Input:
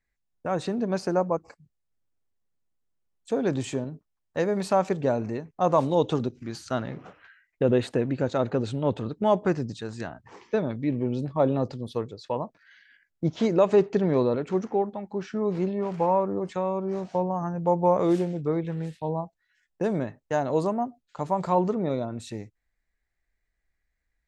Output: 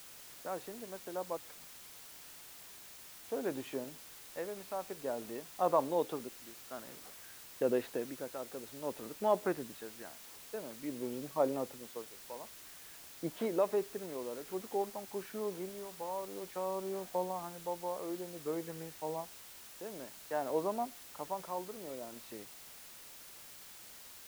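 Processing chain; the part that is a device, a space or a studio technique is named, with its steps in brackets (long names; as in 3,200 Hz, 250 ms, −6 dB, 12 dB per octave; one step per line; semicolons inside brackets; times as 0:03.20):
shortwave radio (band-pass filter 310–2,800 Hz; amplitude tremolo 0.53 Hz, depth 69%; white noise bed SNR 13 dB)
level −7 dB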